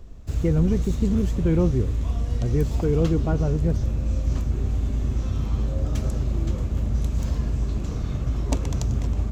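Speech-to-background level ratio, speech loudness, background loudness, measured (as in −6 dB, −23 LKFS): 1.5 dB, −25.0 LKFS, −26.5 LKFS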